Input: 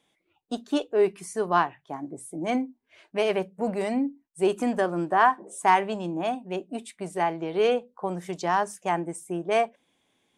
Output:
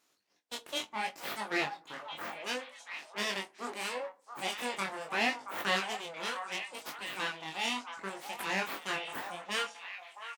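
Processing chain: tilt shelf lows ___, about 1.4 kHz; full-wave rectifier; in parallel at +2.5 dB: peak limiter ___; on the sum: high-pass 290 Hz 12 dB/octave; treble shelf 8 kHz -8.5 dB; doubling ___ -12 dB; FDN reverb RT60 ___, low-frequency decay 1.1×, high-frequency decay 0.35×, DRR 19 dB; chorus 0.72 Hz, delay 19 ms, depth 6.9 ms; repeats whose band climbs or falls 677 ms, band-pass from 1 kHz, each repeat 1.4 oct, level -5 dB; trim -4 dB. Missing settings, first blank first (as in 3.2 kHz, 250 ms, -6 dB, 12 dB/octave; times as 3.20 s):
-10 dB, -19.5 dBFS, 20 ms, 0.67 s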